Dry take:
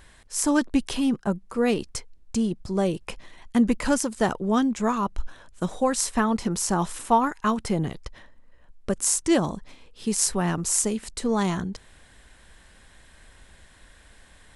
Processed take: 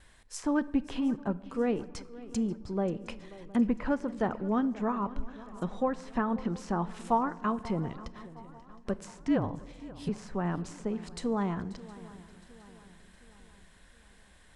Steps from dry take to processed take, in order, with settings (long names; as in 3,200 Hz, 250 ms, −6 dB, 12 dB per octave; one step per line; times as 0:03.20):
noise gate with hold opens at −43 dBFS
treble cut that deepens with the level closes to 1,700 Hz, closed at −21 dBFS
0:09.11–0:10.09: frequency shifter −47 Hz
feedback echo with a long and a short gap by turns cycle 714 ms, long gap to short 3 to 1, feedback 46%, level −18.5 dB
convolution reverb RT60 1.5 s, pre-delay 4 ms, DRR 17 dB
level −6.5 dB